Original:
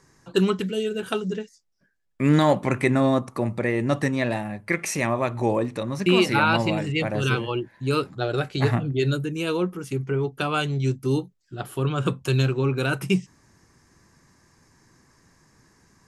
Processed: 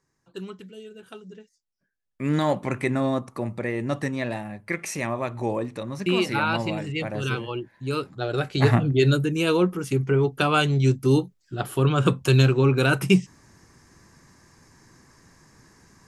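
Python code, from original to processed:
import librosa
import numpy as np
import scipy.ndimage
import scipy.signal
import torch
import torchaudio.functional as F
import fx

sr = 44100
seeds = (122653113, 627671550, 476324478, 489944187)

y = fx.gain(x, sr, db=fx.line((1.27, -16.0), (2.47, -4.0), (8.09, -4.0), (8.75, 4.0)))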